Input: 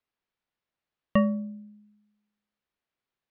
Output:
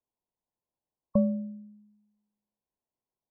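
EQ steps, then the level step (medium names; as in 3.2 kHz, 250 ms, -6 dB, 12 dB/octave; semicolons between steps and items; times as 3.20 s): brick-wall FIR low-pass 1.1 kHz; -1.5 dB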